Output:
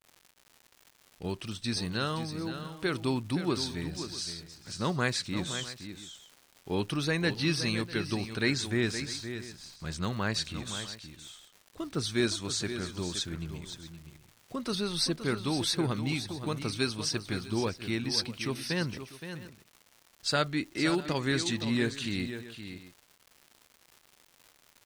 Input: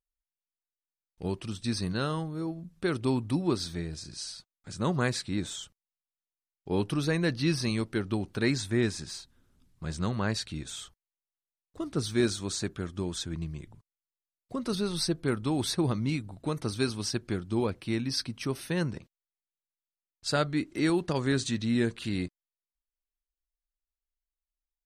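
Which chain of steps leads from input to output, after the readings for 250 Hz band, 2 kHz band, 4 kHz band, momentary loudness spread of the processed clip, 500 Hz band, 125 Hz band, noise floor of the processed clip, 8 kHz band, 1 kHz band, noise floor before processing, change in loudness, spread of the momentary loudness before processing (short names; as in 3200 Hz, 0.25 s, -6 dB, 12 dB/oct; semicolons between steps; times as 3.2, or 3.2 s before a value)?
-2.5 dB, +2.5 dB, +3.5 dB, 14 LU, -2.0 dB, -2.5 dB, -64 dBFS, +1.0 dB, +0.5 dB, under -85 dBFS, -1.0 dB, 11 LU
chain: bell 3100 Hz +6.5 dB 2.7 oct; crackle 240/s -40 dBFS; tapped delay 0.519/0.647 s -10/-18.5 dB; gain -3 dB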